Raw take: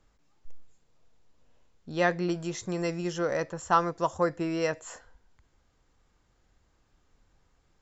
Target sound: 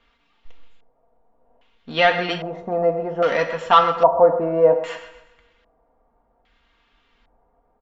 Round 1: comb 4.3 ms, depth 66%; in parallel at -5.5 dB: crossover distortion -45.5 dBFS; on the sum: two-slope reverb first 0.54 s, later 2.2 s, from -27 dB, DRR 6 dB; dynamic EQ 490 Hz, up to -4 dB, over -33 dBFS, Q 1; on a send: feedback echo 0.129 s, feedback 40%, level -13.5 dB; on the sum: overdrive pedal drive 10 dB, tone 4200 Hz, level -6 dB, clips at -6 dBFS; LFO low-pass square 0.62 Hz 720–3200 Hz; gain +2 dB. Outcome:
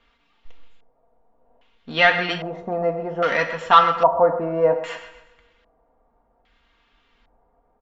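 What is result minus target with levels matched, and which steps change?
2000 Hz band +4.0 dB
change: dynamic EQ 1800 Hz, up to -4 dB, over -33 dBFS, Q 1

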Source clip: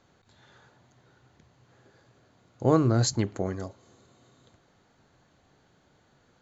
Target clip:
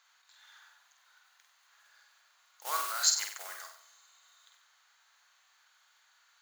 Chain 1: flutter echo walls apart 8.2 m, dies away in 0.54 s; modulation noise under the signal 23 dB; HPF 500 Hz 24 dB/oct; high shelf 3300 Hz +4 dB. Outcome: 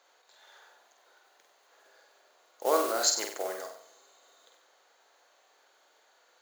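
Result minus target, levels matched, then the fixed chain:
500 Hz band +19.0 dB
flutter echo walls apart 8.2 m, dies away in 0.54 s; modulation noise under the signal 23 dB; HPF 1100 Hz 24 dB/oct; high shelf 3300 Hz +4 dB

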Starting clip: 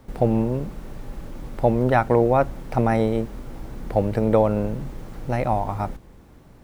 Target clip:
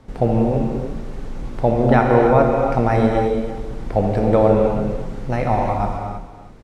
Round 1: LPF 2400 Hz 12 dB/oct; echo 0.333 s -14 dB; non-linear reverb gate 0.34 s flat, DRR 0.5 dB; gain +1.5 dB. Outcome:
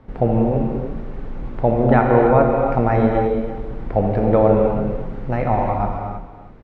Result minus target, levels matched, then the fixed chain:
8000 Hz band -17.0 dB
LPF 7600 Hz 12 dB/oct; echo 0.333 s -14 dB; non-linear reverb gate 0.34 s flat, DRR 0.5 dB; gain +1.5 dB

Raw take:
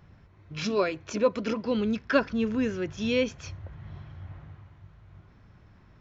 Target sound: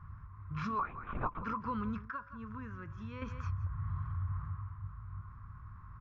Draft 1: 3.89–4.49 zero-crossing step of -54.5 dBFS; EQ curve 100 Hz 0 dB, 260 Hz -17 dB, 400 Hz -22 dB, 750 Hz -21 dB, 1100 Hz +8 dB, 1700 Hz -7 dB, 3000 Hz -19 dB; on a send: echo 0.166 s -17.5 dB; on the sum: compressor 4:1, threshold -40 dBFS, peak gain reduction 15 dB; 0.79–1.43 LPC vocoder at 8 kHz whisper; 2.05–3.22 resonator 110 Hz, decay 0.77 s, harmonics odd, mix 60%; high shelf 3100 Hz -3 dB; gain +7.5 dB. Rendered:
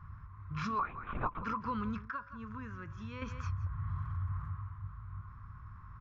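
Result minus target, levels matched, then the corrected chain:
4000 Hz band +4.0 dB
3.89–4.49 zero-crossing step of -54.5 dBFS; EQ curve 100 Hz 0 dB, 260 Hz -17 dB, 400 Hz -22 dB, 750 Hz -21 dB, 1100 Hz +8 dB, 1700 Hz -7 dB, 3000 Hz -19 dB; on a send: echo 0.166 s -17.5 dB; on the sum: compressor 4:1, threshold -40 dBFS, peak gain reduction 15 dB; 0.79–1.43 LPC vocoder at 8 kHz whisper; 2.05–3.22 resonator 110 Hz, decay 0.77 s, harmonics odd, mix 60%; high shelf 3100 Hz -11.5 dB; gain +7.5 dB

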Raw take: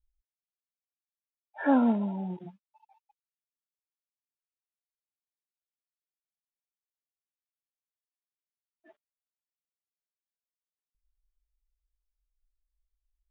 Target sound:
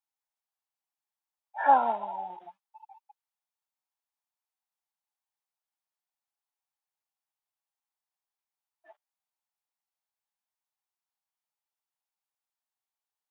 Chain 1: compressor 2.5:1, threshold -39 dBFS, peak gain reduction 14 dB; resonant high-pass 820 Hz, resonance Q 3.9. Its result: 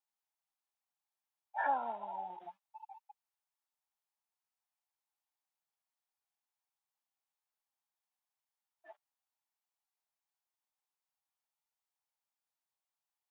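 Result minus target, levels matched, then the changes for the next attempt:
compressor: peak gain reduction +14 dB
remove: compressor 2.5:1, threshold -39 dBFS, peak gain reduction 14 dB

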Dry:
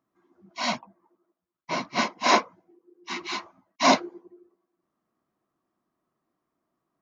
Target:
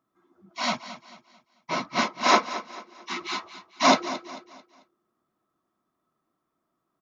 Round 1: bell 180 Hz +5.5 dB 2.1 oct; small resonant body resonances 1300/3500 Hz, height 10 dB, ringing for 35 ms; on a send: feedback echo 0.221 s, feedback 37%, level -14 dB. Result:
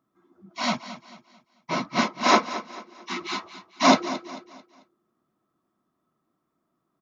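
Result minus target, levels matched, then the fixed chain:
250 Hz band +3.5 dB
small resonant body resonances 1300/3500 Hz, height 10 dB, ringing for 35 ms; on a send: feedback echo 0.221 s, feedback 37%, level -14 dB

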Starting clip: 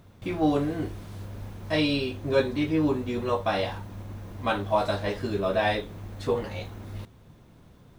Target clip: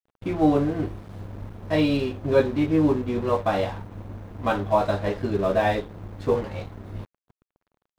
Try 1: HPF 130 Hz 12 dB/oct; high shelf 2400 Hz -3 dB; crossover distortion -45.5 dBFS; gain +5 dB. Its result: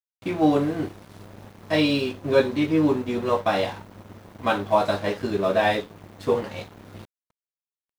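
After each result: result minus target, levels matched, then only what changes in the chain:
4000 Hz band +5.5 dB; 125 Hz band -4.5 dB
change: high shelf 2400 Hz -12.5 dB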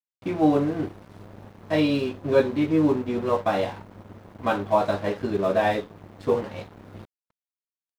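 125 Hz band -3.5 dB
remove: HPF 130 Hz 12 dB/oct

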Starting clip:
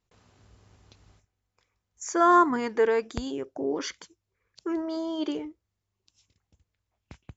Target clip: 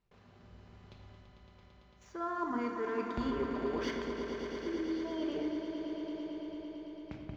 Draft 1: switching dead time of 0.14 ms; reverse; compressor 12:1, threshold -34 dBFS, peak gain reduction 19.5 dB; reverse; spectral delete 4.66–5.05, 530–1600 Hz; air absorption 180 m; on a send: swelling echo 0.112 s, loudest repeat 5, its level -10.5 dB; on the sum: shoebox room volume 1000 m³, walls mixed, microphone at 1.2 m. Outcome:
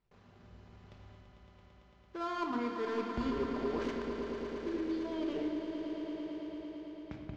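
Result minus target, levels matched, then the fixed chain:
switching dead time: distortion +11 dB
switching dead time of 0.056 ms; reverse; compressor 12:1, threshold -34 dBFS, peak gain reduction 19.5 dB; reverse; spectral delete 4.66–5.05, 530–1600 Hz; air absorption 180 m; on a send: swelling echo 0.112 s, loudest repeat 5, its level -10.5 dB; on the sum: shoebox room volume 1000 m³, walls mixed, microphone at 1.2 m

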